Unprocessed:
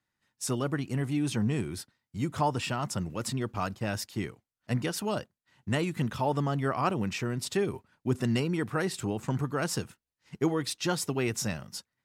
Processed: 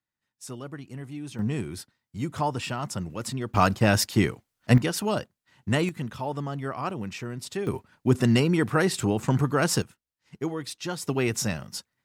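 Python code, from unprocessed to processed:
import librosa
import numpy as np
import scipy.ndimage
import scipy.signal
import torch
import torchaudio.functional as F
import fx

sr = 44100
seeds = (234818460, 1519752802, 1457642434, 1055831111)

y = fx.gain(x, sr, db=fx.steps((0.0, -8.0), (1.39, 0.5), (3.54, 11.5), (4.78, 4.5), (5.89, -3.0), (7.67, 7.0), (9.82, -3.0), (11.07, 4.0)))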